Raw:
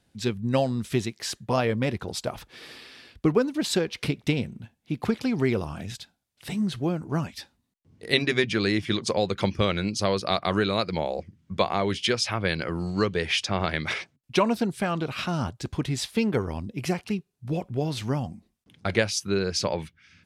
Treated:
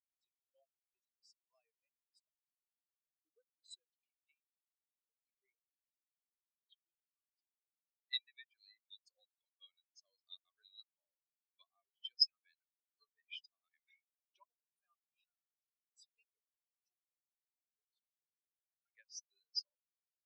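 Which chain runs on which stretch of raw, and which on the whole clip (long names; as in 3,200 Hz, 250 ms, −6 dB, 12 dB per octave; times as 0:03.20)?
0:06.54–0:07.22: mu-law and A-law mismatch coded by mu + parametric band 3,000 Hz +9 dB 0.64 octaves
whole clip: high-pass filter 360 Hz 6 dB per octave; first difference; every bin expanded away from the loudest bin 4 to 1; level −3.5 dB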